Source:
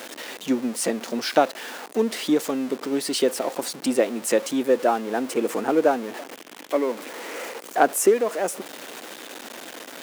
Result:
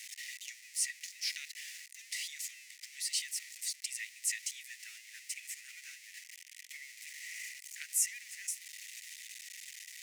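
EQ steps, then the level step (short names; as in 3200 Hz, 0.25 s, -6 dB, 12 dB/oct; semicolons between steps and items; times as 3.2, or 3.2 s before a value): rippled Chebyshev high-pass 1900 Hz, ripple 3 dB; bell 3100 Hz -9 dB 0.93 oct; high shelf 12000 Hz -11 dB; 0.0 dB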